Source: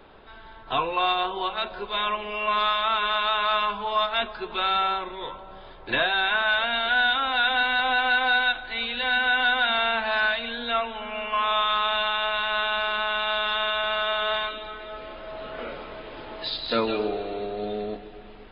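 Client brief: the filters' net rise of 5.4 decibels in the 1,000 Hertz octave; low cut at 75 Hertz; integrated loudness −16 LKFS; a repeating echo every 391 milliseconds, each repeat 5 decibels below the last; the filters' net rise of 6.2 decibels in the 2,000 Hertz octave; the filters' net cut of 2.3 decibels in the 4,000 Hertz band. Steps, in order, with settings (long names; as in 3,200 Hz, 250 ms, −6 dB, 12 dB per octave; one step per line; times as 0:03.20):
high-pass filter 75 Hz
parametric band 1,000 Hz +4.5 dB
parametric band 2,000 Hz +8.5 dB
parametric band 4,000 Hz −6 dB
repeating echo 391 ms, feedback 56%, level −5 dB
level +2 dB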